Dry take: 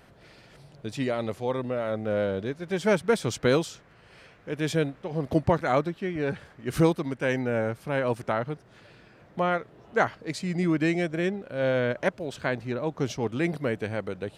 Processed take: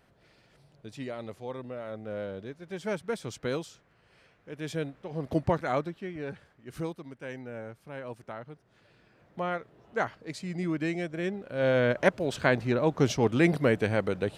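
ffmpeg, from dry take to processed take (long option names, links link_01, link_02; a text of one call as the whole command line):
ffmpeg -i in.wav -af "volume=14dB,afade=type=in:start_time=4.53:duration=0.94:silence=0.501187,afade=type=out:start_time=5.47:duration=1.19:silence=0.316228,afade=type=in:start_time=8.47:duration=1.05:silence=0.421697,afade=type=in:start_time=11.16:duration=1.13:silence=0.316228" out.wav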